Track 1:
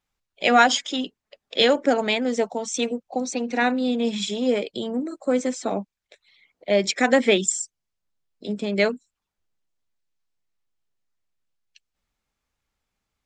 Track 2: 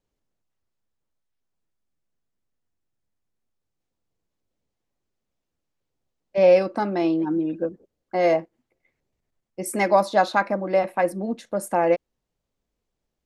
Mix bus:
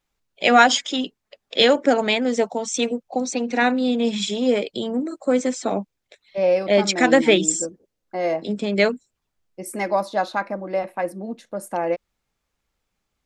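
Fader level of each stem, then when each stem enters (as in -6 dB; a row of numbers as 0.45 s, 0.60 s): +2.5 dB, -3.5 dB; 0.00 s, 0.00 s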